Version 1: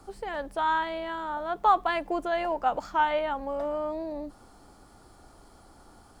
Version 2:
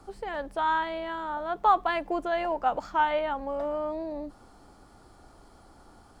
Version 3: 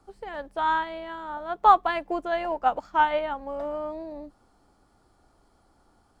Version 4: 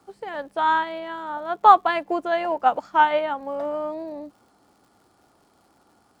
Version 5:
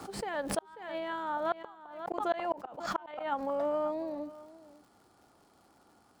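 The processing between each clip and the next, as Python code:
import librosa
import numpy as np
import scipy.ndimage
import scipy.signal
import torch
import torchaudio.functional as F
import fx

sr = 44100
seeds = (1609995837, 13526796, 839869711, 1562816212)

y1 = fx.high_shelf(x, sr, hz=7200.0, db=-6.5)
y2 = fx.upward_expand(y1, sr, threshold_db=-46.0, expansion=1.5)
y2 = y2 * librosa.db_to_amplitude(5.5)
y3 = scipy.signal.sosfilt(scipy.signal.butter(2, 130.0, 'highpass', fs=sr, output='sos'), y2)
y3 = fx.dmg_crackle(y3, sr, seeds[0], per_s=190.0, level_db=-56.0)
y3 = y3 * librosa.db_to_amplitude(4.0)
y4 = fx.gate_flip(y3, sr, shuts_db=-15.0, range_db=-40)
y4 = y4 + 10.0 ** (-18.0 / 20.0) * np.pad(y4, (int(539 * sr / 1000.0), 0))[:len(y4)]
y4 = fx.pre_swell(y4, sr, db_per_s=69.0)
y4 = y4 * librosa.db_to_amplitude(-3.5)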